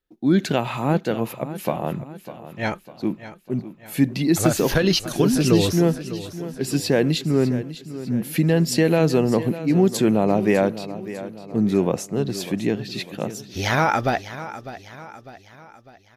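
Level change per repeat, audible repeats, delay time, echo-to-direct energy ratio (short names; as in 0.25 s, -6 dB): -6.5 dB, 4, 0.601 s, -13.0 dB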